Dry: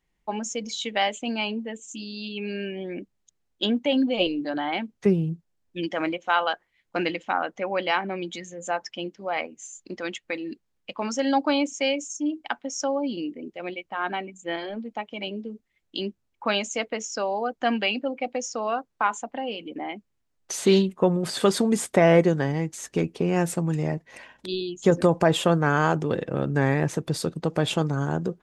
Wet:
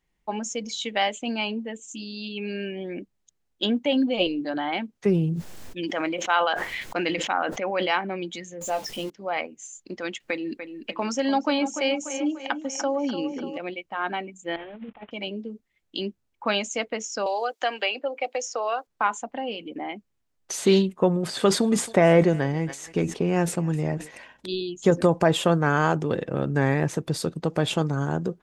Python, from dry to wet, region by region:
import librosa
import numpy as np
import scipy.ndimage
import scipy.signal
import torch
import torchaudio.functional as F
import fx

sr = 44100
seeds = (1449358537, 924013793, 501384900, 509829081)

y = fx.chain(x, sr, fx.low_shelf(hz=210.0, db=-5.5),
    fx.sustainer(db_per_s=31.0), at=(4.91, 7.93))
y = fx.chain(y, sr, fx.zero_step(step_db=-34.5),
    fx.peak_eq(hz=1500.0, db=-9.5, octaves=0.98),
    fx.doubler(ms=19.0, db=-7.5), at=(8.61, 9.1))
y = fx.chain(y, sr, fx.echo_wet_lowpass(ms=293, feedback_pct=52, hz=2900.0, wet_db=-11),
    fx.band_squash(depth_pct=40), at=(10.2, 13.58))
y = fx.chain(y, sr, fx.cvsd(bps=16000),
    fx.over_compress(threshold_db=-38.0, ratio=-0.5), at=(14.56, 15.11))
y = fx.chain(y, sr, fx.highpass(hz=390.0, slope=24),
    fx.band_squash(depth_pct=70), at=(17.26, 18.87))
y = fx.chain(y, sr, fx.high_shelf(hz=8100.0, db=-7.0),
    fx.echo_thinned(ms=271, feedback_pct=34, hz=1200.0, wet_db=-18),
    fx.sustainer(db_per_s=130.0), at=(21.27, 24.11))